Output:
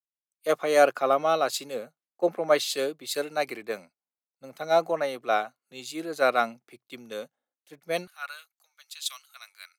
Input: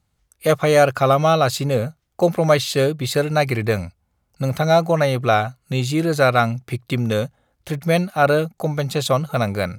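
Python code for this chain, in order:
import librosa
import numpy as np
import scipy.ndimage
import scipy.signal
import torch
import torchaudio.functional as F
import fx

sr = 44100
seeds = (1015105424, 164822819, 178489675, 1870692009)

y = fx.highpass(x, sr, hz=fx.steps((0.0, 260.0), (8.07, 1200.0)), slope=24)
y = fx.band_widen(y, sr, depth_pct=100)
y = y * 10.0 ** (-9.0 / 20.0)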